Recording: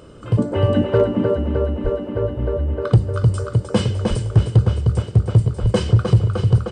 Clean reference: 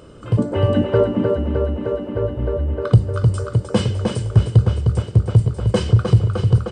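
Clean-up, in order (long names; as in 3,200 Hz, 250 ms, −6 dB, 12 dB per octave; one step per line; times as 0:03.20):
clipped peaks rebuilt −5.5 dBFS
0:01.83–0:01.95: high-pass filter 140 Hz 24 dB per octave
0:04.09–0:04.21: high-pass filter 140 Hz 24 dB per octave
0:05.61–0:05.73: high-pass filter 140 Hz 24 dB per octave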